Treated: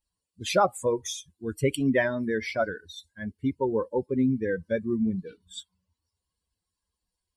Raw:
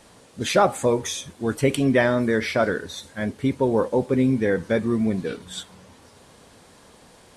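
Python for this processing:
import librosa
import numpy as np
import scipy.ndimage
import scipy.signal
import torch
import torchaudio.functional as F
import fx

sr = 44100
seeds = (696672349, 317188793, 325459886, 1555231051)

y = fx.bin_expand(x, sr, power=2.0)
y = y * 10.0 ** (-1.5 / 20.0)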